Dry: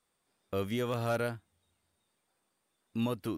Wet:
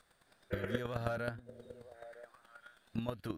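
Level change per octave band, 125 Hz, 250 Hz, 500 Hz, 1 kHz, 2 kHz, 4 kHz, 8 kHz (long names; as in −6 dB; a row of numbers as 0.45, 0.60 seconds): −3.5, −6.5, −5.0, −5.5, −1.5, −6.5, −10.5 decibels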